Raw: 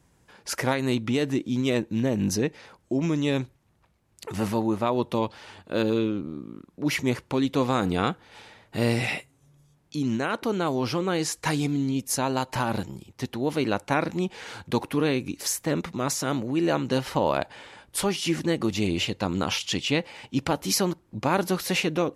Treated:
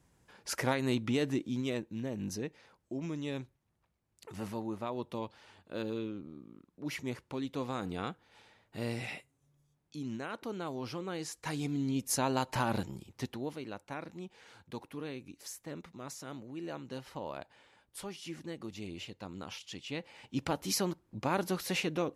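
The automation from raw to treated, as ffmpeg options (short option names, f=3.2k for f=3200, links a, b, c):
-af "volume=11.5dB,afade=t=out:st=1.26:d=0.61:silence=0.446684,afade=t=in:st=11.43:d=0.64:silence=0.398107,afade=t=out:st=13.13:d=0.46:silence=0.237137,afade=t=in:st=19.84:d=0.59:silence=0.334965"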